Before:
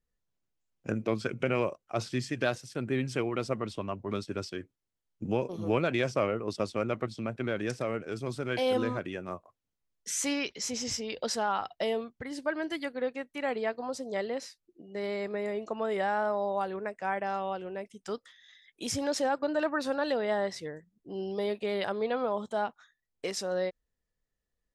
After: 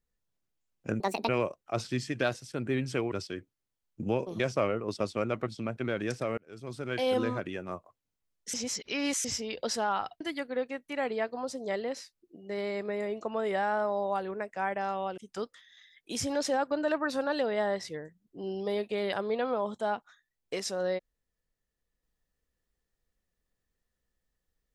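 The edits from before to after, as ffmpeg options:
ffmpeg -i in.wav -filter_complex "[0:a]asplit=10[link_01][link_02][link_03][link_04][link_05][link_06][link_07][link_08][link_09][link_10];[link_01]atrim=end=1.004[link_11];[link_02]atrim=start=1:end=1.5,asetpts=PTS-STARTPTS,asetrate=77175,aresample=44100[link_12];[link_03]atrim=start=1.496:end=3.332[link_13];[link_04]atrim=start=4.338:end=5.622[link_14];[link_05]atrim=start=5.988:end=7.97,asetpts=PTS-STARTPTS,afade=type=out:start_time=1.978:duration=0.004:curve=hsin[link_15];[link_06]atrim=start=7.97:end=10.132,asetpts=PTS-STARTPTS,afade=type=in:duration=0.86:curve=qsin[link_16];[link_07]atrim=start=10.128:end=10.842,asetpts=PTS-STARTPTS,areverse[link_17];[link_08]atrim=start=10.838:end=11.802[link_18];[link_09]atrim=start=12.658:end=17.632[link_19];[link_10]atrim=start=17.888[link_20];[link_11][link_12]acrossfade=duration=0.004:curve1=hsin:curve2=hsin[link_21];[link_21][link_13]acrossfade=duration=0.004:curve1=hsin:curve2=hsin[link_22];[link_22][link_14]acrossfade=duration=0.004:curve1=hsin:curve2=hsin[link_23];[link_15][link_16]concat=n=2:v=0:a=1[link_24];[link_23][link_24]acrossfade=duration=0.004:curve1=hsin:curve2=hsin[link_25];[link_25][link_17]acrossfade=duration=0.004:curve1=hsin:curve2=hsin[link_26];[link_26][link_18]acrossfade=duration=0.004:curve1=hsin:curve2=hsin[link_27];[link_27][link_19]acrossfade=duration=0.004:curve1=hsin:curve2=hsin[link_28];[link_28][link_20]acrossfade=duration=0.004:curve1=hsin:curve2=hsin" out.wav

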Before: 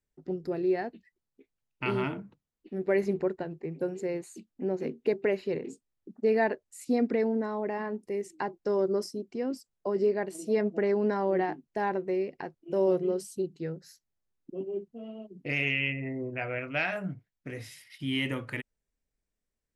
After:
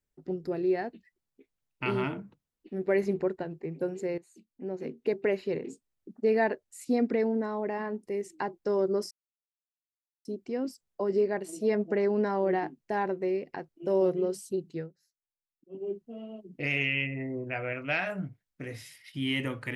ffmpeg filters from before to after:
ffmpeg -i in.wav -filter_complex "[0:a]asplit=5[link_01][link_02][link_03][link_04][link_05];[link_01]atrim=end=4.18,asetpts=PTS-STARTPTS,afade=type=out:start_time=4.176:duration=0.004:curve=hsin:silence=0.158489[link_06];[link_02]atrim=start=4.18:end=9.11,asetpts=PTS-STARTPTS,afade=type=in:duration=1.12:silence=0.158489,afade=type=out:start_time=4.926:duration=0.004:curve=hsin,apad=pad_dur=1.14[link_07];[link_03]atrim=start=9.11:end=13.78,asetpts=PTS-STARTPTS,afade=type=in:duration=0.004:curve=hsin,afade=type=out:start_time=4.53:duration=0.14:silence=0.1[link_08];[link_04]atrim=start=13.78:end=14.55,asetpts=PTS-STARTPTS,volume=-20dB[link_09];[link_05]atrim=start=14.55,asetpts=PTS-STARTPTS,afade=type=in:duration=0.14:silence=0.1[link_10];[link_06][link_07][link_08][link_09][link_10]concat=n=5:v=0:a=1" out.wav

